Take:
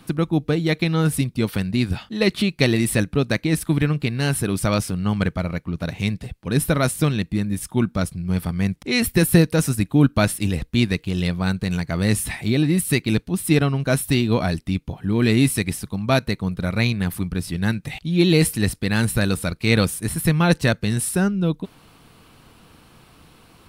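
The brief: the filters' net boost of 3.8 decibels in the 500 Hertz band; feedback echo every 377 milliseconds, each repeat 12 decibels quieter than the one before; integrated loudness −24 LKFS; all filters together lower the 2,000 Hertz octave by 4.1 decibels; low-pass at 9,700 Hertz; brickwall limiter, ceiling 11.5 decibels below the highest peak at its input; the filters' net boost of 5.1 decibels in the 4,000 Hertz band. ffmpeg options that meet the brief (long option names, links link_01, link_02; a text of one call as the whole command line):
ffmpeg -i in.wav -af "lowpass=9700,equalizer=frequency=500:width_type=o:gain=5,equalizer=frequency=2000:width_type=o:gain=-8,equalizer=frequency=4000:width_type=o:gain=7.5,alimiter=limit=-12dB:level=0:latency=1,aecho=1:1:377|754|1131:0.251|0.0628|0.0157,volume=-0.5dB" out.wav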